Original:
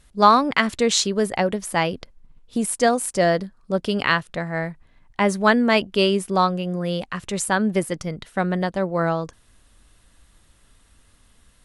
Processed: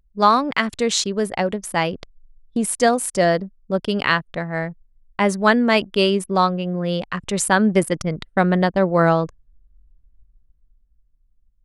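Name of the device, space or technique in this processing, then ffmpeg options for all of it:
voice memo with heavy noise removal: -af "anlmdn=6.31,dynaudnorm=framelen=130:gausssize=21:maxgain=10dB,volume=-1dB"

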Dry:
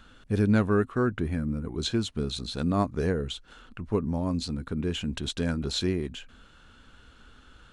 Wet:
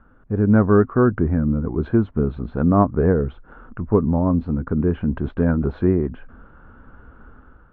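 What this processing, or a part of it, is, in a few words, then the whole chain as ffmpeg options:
action camera in a waterproof case: -af "lowpass=frequency=1400:width=0.5412,lowpass=frequency=1400:width=1.3066,dynaudnorm=framelen=190:gausssize=5:maxgain=8.5dB,volume=1.5dB" -ar 24000 -c:a aac -b:a 64k

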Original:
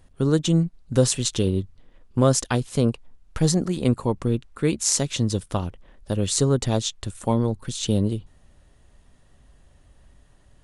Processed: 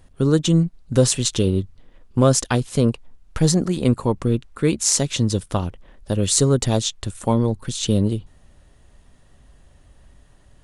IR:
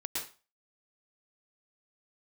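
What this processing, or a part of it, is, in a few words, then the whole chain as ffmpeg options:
parallel distortion: -filter_complex "[0:a]asettb=1/sr,asplit=3[link_01][link_02][link_03];[link_01]atrim=end=6.234[link_04];[link_02]atrim=start=6.23:end=6.84,asetpts=PTS-STARTPTS,afade=type=in:duration=0.004:curve=qsin,afade=type=out:start_time=0.606:duration=0.004:curve=qsin,highshelf=frequency=7900:gain=6[link_05];[link_03]atrim=start=6.836[link_06];[link_04][link_05]acrossfade=duration=0.004:curve1=hsin:curve2=qsin[link_07];[link_07][link_06]acrossfade=duration=0.004:curve1=qsin:curve2=hsin,asplit=2[link_08][link_09];[link_09]asoftclip=type=hard:threshold=-16dB,volume=-12.5dB[link_10];[link_08][link_10]amix=inputs=2:normalize=0,volume=1.5dB"

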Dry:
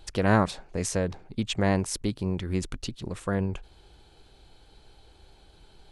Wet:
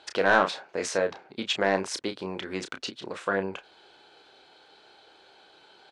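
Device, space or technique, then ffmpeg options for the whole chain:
intercom: -filter_complex "[0:a]highpass=440,lowpass=4800,equalizer=frequency=1500:width_type=o:width=0.23:gain=5,asoftclip=type=tanh:threshold=-14.5dB,asplit=2[link_01][link_02];[link_02]adelay=31,volume=-8dB[link_03];[link_01][link_03]amix=inputs=2:normalize=0,volume=5dB"

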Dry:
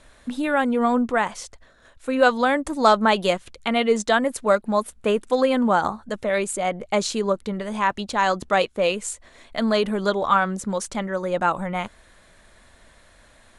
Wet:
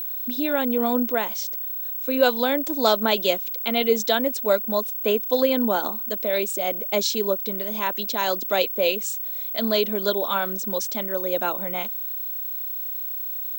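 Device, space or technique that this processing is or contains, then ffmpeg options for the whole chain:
old television with a line whistle: -af "highpass=frequency=230:width=0.5412,highpass=frequency=230:width=1.3066,equalizer=frequency=830:width_type=q:width=4:gain=-6,equalizer=frequency=1200:width_type=q:width=4:gain=-10,equalizer=frequency=1800:width_type=q:width=4:gain=-7,equalizer=frequency=3700:width_type=q:width=4:gain=6,equalizer=frequency=5500:width_type=q:width=4:gain=6,lowpass=frequency=8100:width=0.5412,lowpass=frequency=8100:width=1.3066,aeval=exprs='val(0)+0.0447*sin(2*PI*15734*n/s)':channel_layout=same"

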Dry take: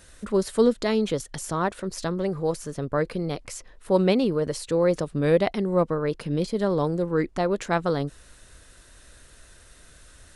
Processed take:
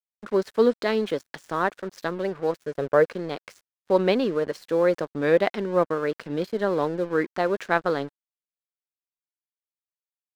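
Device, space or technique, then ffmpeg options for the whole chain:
pocket radio on a weak battery: -filter_complex "[0:a]asettb=1/sr,asplit=3[link_01][link_02][link_03];[link_01]atrim=end=2.664[link_04];[link_02]atrim=start=2.66:end=3.1,asetpts=PTS-STARTPTS,afade=type=in:duration=0.004:curve=qsin,afade=type=out:start_time=0.436:duration=0.004:curve=qsin,equalizer=frequency=125:width_type=o:width=1:gain=6,equalizer=frequency=250:width_type=o:width=1:gain=-4,equalizer=frequency=500:width_type=o:width=1:gain=8[link_05];[link_03]atrim=start=3.096[link_06];[link_04][link_05]acrossfade=duration=0.004:curve1=hsin:curve2=qsin[link_07];[link_07][link_06]acrossfade=duration=0.004:curve1=qsin:curve2=hsin,highpass=260,lowpass=4300,aeval=exprs='sgn(val(0))*max(abs(val(0))-0.00596,0)':channel_layout=same,equalizer=frequency=1600:width_type=o:width=0.48:gain=5,volume=1.5dB"

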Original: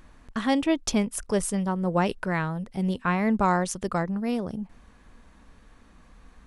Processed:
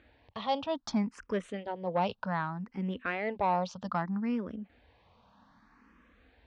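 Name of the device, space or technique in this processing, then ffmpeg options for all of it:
barber-pole phaser into a guitar amplifier: -filter_complex "[0:a]asplit=2[link_01][link_02];[link_02]afreqshift=0.64[link_03];[link_01][link_03]amix=inputs=2:normalize=1,asoftclip=type=tanh:threshold=-17.5dB,highpass=87,equalizer=frequency=150:width_type=q:width=4:gain=-9,equalizer=frequency=370:width_type=q:width=4:gain=-5,equalizer=frequency=890:width_type=q:width=4:gain=3,lowpass=frequency=4500:width=0.5412,lowpass=frequency=4500:width=1.3066,volume=-1.5dB"

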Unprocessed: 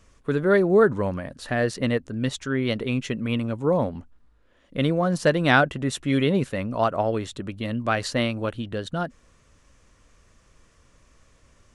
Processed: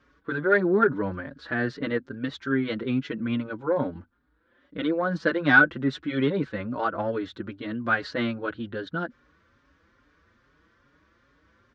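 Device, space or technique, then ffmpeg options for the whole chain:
barber-pole flanger into a guitar amplifier: -filter_complex "[0:a]asplit=2[link_01][link_02];[link_02]adelay=5.2,afreqshift=2.4[link_03];[link_01][link_03]amix=inputs=2:normalize=1,asoftclip=type=tanh:threshold=-11dB,highpass=78,equalizer=frequency=110:width_type=q:width=4:gain=-5,equalizer=frequency=170:width_type=q:width=4:gain=-3,equalizer=frequency=300:width_type=q:width=4:gain=6,equalizer=frequency=680:width_type=q:width=4:gain=-5,equalizer=frequency=1500:width_type=q:width=4:gain=10,equalizer=frequency=2700:width_type=q:width=4:gain=-6,lowpass=frequency=4200:width=0.5412,lowpass=frequency=4200:width=1.3066"

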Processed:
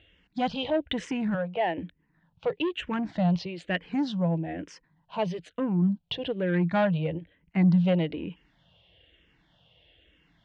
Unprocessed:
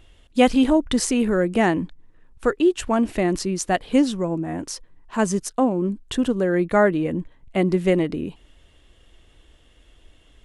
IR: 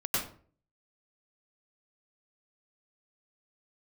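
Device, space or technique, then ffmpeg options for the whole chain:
barber-pole phaser into a guitar amplifier: -filter_complex "[0:a]asettb=1/sr,asplit=3[link_01][link_02][link_03];[link_01]atrim=end=1.344[link_04];[link_02]atrim=start=1.34:end=1.78,asetpts=PTS-STARTPTS,afade=type=in:duration=0.004:curve=qsin,afade=type=out:start_time=0.436:duration=0.004:curve=qsin,acrossover=split=400 2500:gain=0.2 1 0.178[link_05][link_06][link_07];[link_05][link_06][link_07]amix=inputs=3:normalize=0[link_08];[link_03]atrim=start=1.776[link_09];[link_04][link_08]acrossfade=duration=0.004:curve1=hsin:curve2=qsin[link_10];[link_10][link_09]acrossfade=duration=0.004:curve1=qsin:curve2=hsin,asplit=2[link_11][link_12];[link_12]afreqshift=-1.1[link_13];[link_11][link_13]amix=inputs=2:normalize=1,asoftclip=type=tanh:threshold=-16dB,highpass=96,equalizer=frequency=170:width_type=q:width=4:gain=9,equalizer=frequency=240:width_type=q:width=4:gain=-9,equalizer=frequency=380:width_type=q:width=4:gain=-9,equalizer=frequency=1200:width_type=q:width=4:gain=-9,equalizer=frequency=3000:width_type=q:width=4:gain=3,lowpass=frequency=4100:width=0.5412,lowpass=frequency=4100:width=1.3066"

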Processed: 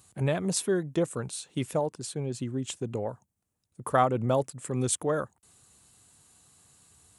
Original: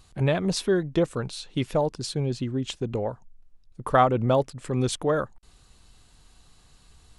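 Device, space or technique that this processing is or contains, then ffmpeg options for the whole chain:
budget condenser microphone: -filter_complex "[0:a]asettb=1/sr,asplit=3[link_01][link_02][link_03];[link_01]atrim=end=1.794[link_04];[link_02]atrim=start=1.79:end=2.34,asetpts=PTS-STARTPTS,afade=type=in:duration=0.004:curve=qsin,afade=type=out:start_time=0.546:duration=0.004:curve=qsin,bass=frequency=250:gain=-3,treble=frequency=4000:gain=-6[link_05];[link_03]atrim=start=2.336[link_06];[link_04][link_05]acrossfade=duration=0.004:curve1=hsin:curve2=qsin[link_07];[link_07][link_06]acrossfade=duration=0.004:curve1=qsin:curve2=hsin,highpass=frequency=83:width=0.5412,highpass=frequency=83:width=1.3066,highshelf=frequency=6200:width_type=q:width=1.5:gain=9,volume=-4dB"

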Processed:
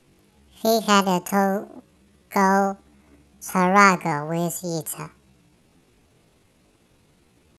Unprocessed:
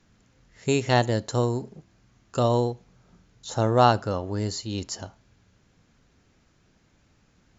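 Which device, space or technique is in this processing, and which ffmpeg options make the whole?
chipmunk voice: -af "asetrate=72056,aresample=44100,atempo=0.612027,volume=3.5dB"

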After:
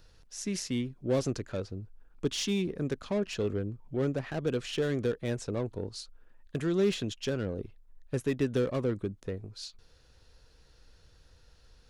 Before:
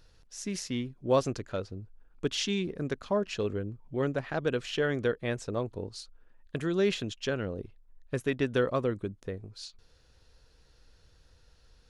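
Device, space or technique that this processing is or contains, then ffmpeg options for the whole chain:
one-band saturation: -filter_complex "[0:a]acrossover=split=460|4600[link_01][link_02][link_03];[link_02]asoftclip=type=tanh:threshold=-37.5dB[link_04];[link_01][link_04][link_03]amix=inputs=3:normalize=0,volume=1.5dB"

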